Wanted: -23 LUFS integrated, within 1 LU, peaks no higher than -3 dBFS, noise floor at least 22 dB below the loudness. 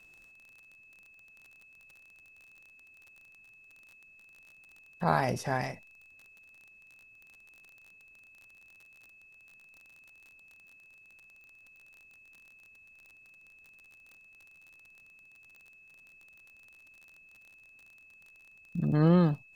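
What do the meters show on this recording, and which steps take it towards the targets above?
tick rate 35 per s; steady tone 2.6 kHz; tone level -55 dBFS; loudness -28.5 LUFS; peak level -10.0 dBFS; loudness target -23.0 LUFS
-> de-click; band-stop 2.6 kHz, Q 30; trim +5.5 dB

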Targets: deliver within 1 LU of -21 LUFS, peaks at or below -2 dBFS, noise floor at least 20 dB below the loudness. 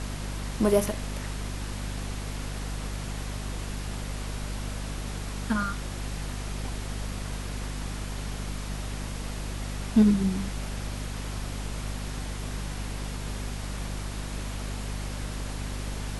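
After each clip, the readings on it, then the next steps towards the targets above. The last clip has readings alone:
hum 50 Hz; highest harmonic 250 Hz; hum level -32 dBFS; noise floor -35 dBFS; noise floor target -52 dBFS; loudness -32.0 LUFS; peak level -9.5 dBFS; loudness target -21.0 LUFS
-> de-hum 50 Hz, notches 5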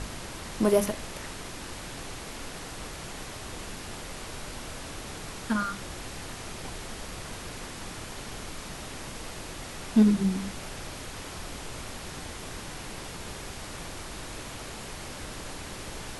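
hum not found; noise floor -41 dBFS; noise floor target -54 dBFS
-> noise print and reduce 13 dB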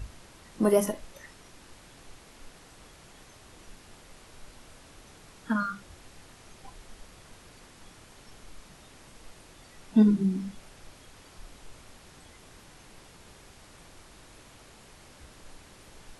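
noise floor -54 dBFS; loudness -27.0 LUFS; peak level -10.0 dBFS; loudness target -21.0 LUFS
-> trim +6 dB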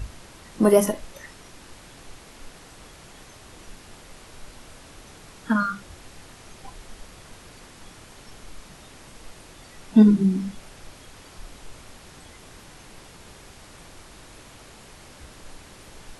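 loudness -21.0 LUFS; peak level -4.0 dBFS; noise floor -48 dBFS

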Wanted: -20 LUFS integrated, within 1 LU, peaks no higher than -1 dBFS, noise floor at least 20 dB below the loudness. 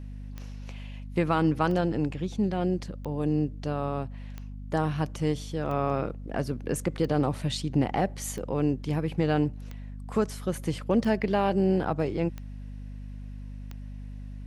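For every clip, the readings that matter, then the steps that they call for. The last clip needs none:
clicks found 11; hum 50 Hz; highest harmonic 250 Hz; hum level -37 dBFS; loudness -28.5 LUFS; peak level -11.0 dBFS; loudness target -20.0 LUFS
-> de-click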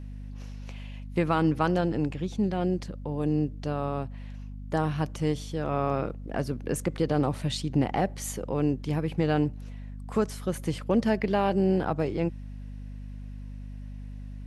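clicks found 0; hum 50 Hz; highest harmonic 250 Hz; hum level -37 dBFS
-> de-hum 50 Hz, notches 5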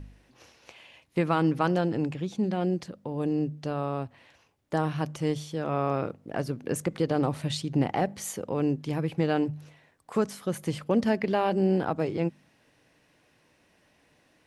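hum not found; loudness -29.0 LUFS; peak level -11.0 dBFS; loudness target -20.0 LUFS
-> trim +9 dB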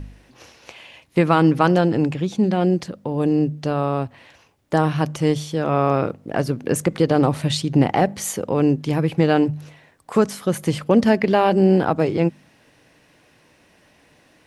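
loudness -20.0 LUFS; peak level -2.0 dBFS; noise floor -57 dBFS

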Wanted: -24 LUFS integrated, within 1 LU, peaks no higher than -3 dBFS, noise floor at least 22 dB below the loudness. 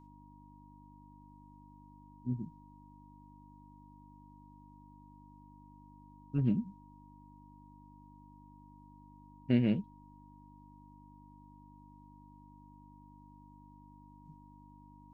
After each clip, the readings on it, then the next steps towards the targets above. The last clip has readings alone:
hum 50 Hz; highest harmonic 300 Hz; hum level -57 dBFS; steady tone 950 Hz; tone level -60 dBFS; loudness -34.0 LUFS; peak level -16.0 dBFS; loudness target -24.0 LUFS
-> de-hum 50 Hz, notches 6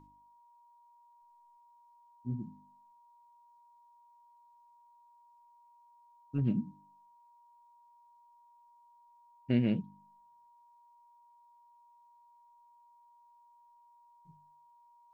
hum not found; steady tone 950 Hz; tone level -60 dBFS
-> band-stop 950 Hz, Q 30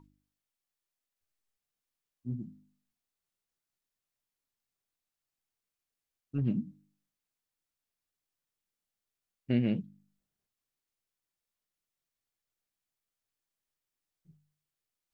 steady tone not found; loudness -33.5 LUFS; peak level -16.5 dBFS; loudness target -24.0 LUFS
-> trim +9.5 dB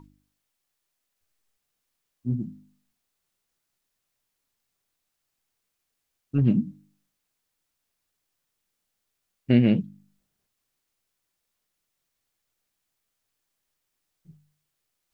loudness -24.5 LUFS; peak level -7.0 dBFS; noise floor -80 dBFS

